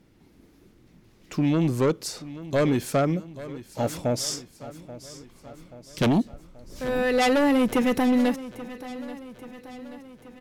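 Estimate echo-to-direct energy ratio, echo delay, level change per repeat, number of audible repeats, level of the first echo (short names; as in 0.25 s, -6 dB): -14.5 dB, 0.832 s, -5.0 dB, 4, -16.0 dB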